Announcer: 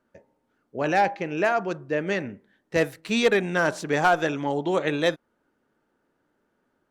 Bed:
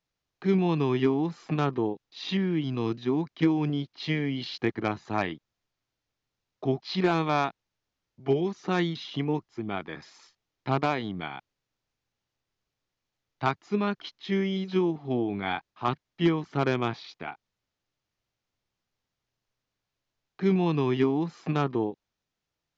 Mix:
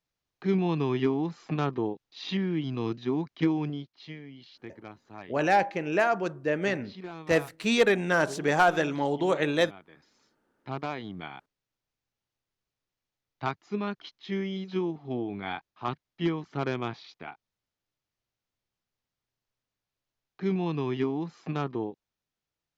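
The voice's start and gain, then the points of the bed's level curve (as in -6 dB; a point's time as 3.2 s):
4.55 s, -1.5 dB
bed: 3.56 s -2 dB
4.23 s -16.5 dB
9.94 s -16.5 dB
11.19 s -4.5 dB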